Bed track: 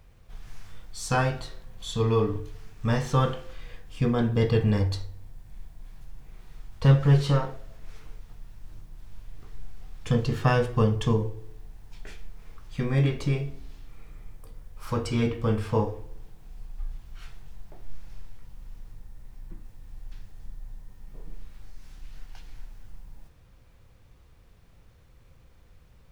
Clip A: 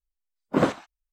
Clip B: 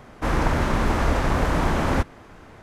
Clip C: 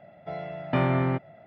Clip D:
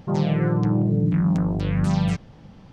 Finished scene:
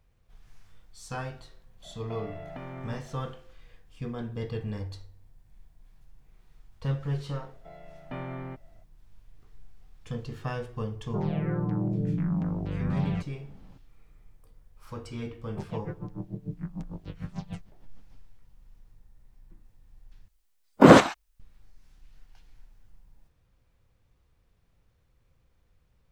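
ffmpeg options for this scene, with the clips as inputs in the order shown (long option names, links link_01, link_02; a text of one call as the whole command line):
ffmpeg -i bed.wav -i cue0.wav -i cue1.wav -i cue2.wav -i cue3.wav -filter_complex "[3:a]asplit=2[link_01][link_02];[4:a]asplit=2[link_03][link_04];[0:a]volume=-11.5dB[link_05];[link_01]acompressor=threshold=-35dB:ratio=6:attack=3.2:release=140:knee=1:detection=peak[link_06];[link_03]lowpass=2600[link_07];[link_04]aeval=exprs='val(0)*pow(10,-23*(0.5-0.5*cos(2*PI*6.7*n/s))/20)':channel_layout=same[link_08];[1:a]alimiter=level_in=16dB:limit=-1dB:release=50:level=0:latency=1[link_09];[link_05]asplit=2[link_10][link_11];[link_10]atrim=end=20.284[link_12];[link_09]atrim=end=1.12,asetpts=PTS-STARTPTS,volume=-1.5dB[link_13];[link_11]atrim=start=21.396[link_14];[link_06]atrim=end=1.46,asetpts=PTS-STARTPTS,volume=-3dB,afade=type=in:duration=0.004:curve=hsin,afade=type=out:start_time=1.456:duration=0.004:curve=hsin,adelay=1830[link_15];[link_02]atrim=end=1.46,asetpts=PTS-STARTPTS,volume=-13.5dB,afade=type=in:duration=0.004:curve=hsin,afade=type=out:start_time=1.456:duration=0.004:curve=hsin,adelay=325458S[link_16];[link_07]atrim=end=2.72,asetpts=PTS-STARTPTS,volume=-8dB,afade=type=in:duration=0.004:curve=hsin,afade=type=out:start_time=2.716:duration=0.004:curve=hsin,adelay=487746S[link_17];[link_08]atrim=end=2.72,asetpts=PTS-STARTPTS,volume=-12dB,afade=type=in:duration=0.004:curve=hsin,afade=type=out:start_time=2.716:duration=0.004:curve=hsin,adelay=15450[link_18];[link_12][link_13]acrossfade=duration=0.004:curve1=hsin:curve2=hsin[link_19];[link_19][link_14]acrossfade=duration=0.004:curve1=hsin:curve2=hsin[link_20];[link_20][link_15][link_16][link_17][link_18]amix=inputs=5:normalize=0" out.wav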